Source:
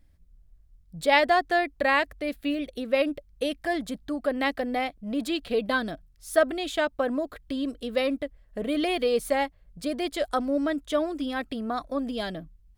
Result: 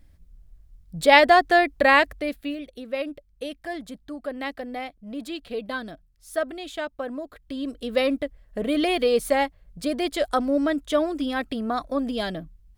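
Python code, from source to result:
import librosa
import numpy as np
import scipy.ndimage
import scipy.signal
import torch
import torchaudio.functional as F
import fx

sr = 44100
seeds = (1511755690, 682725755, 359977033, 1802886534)

y = fx.gain(x, sr, db=fx.line((2.09, 6.0), (2.62, -5.0), (7.3, -5.0), (7.97, 3.5)))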